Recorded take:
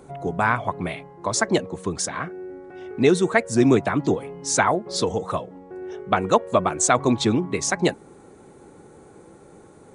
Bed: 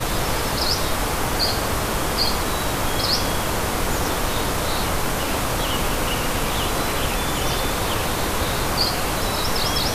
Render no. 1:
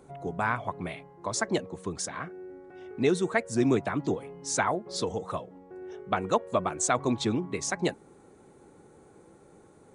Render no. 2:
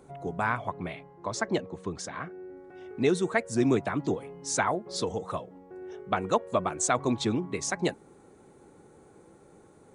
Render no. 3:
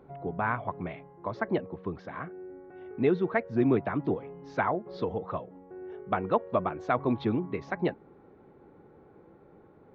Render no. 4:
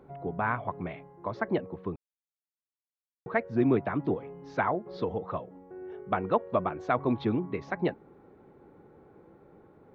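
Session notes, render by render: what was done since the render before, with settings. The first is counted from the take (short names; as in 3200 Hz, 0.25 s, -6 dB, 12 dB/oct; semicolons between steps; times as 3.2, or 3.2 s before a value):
gain -7.5 dB
0.71–2.57 air absorption 72 m
Gaussian blur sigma 3.1 samples
1.96–3.26 mute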